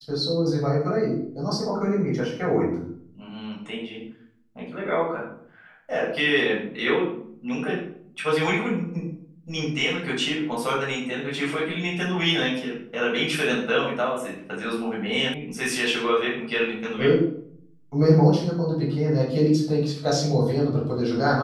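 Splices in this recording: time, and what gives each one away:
15.34 s: sound stops dead

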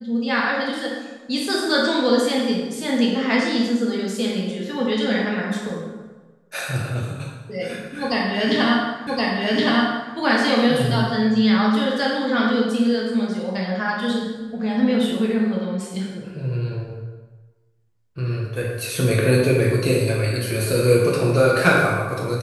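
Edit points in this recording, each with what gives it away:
9.07 s: repeat of the last 1.07 s

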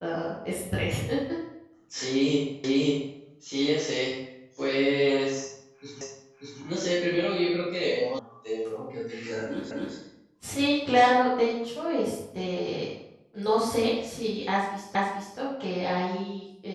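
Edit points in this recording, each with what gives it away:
2.64 s: repeat of the last 0.54 s
6.01 s: repeat of the last 0.59 s
8.19 s: sound stops dead
9.71 s: repeat of the last 0.25 s
14.95 s: repeat of the last 0.43 s

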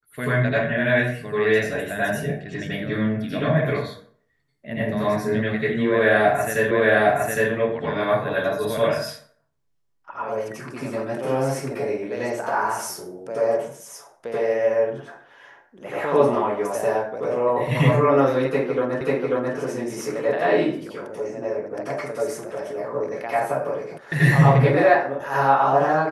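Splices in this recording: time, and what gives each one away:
6.71 s: repeat of the last 0.81 s
19.01 s: repeat of the last 0.54 s
23.98 s: sound stops dead

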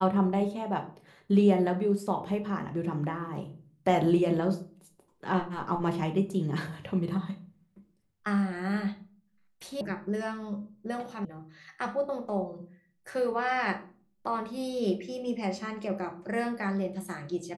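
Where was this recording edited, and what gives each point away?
9.81 s: sound stops dead
11.25 s: sound stops dead

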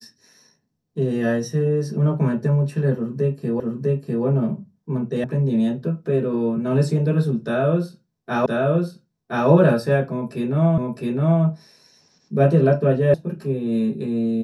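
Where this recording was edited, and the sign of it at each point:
3.60 s: repeat of the last 0.65 s
5.24 s: sound stops dead
8.46 s: repeat of the last 1.02 s
10.78 s: repeat of the last 0.66 s
13.14 s: sound stops dead

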